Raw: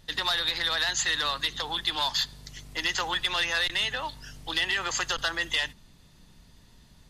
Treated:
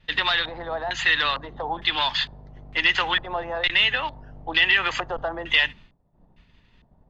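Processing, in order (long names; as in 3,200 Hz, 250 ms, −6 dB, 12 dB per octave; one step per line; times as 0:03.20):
auto-filter low-pass square 1.1 Hz 730–2,600 Hz
upward compression, threshold −46 dBFS
downward expander −44 dBFS
level +4 dB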